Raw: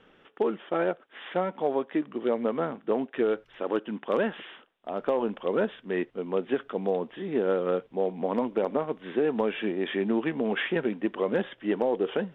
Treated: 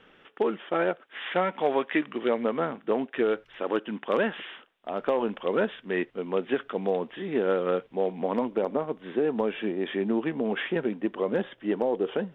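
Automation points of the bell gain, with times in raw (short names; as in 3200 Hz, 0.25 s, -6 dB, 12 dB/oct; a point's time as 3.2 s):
bell 2300 Hz 2 oct
0.89 s +4.5 dB
1.94 s +14.5 dB
2.49 s +4.5 dB
8.17 s +4.5 dB
8.71 s -2.5 dB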